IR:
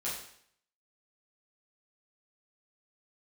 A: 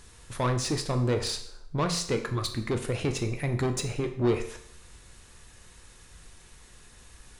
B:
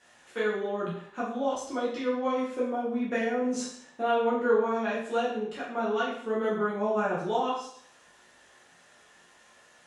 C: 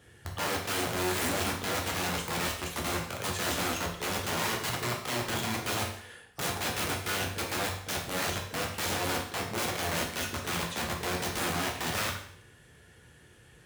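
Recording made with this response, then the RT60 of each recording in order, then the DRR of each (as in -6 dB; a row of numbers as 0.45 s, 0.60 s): B; 0.65 s, 0.65 s, 0.65 s; 5.0 dB, -8.5 dB, -1.0 dB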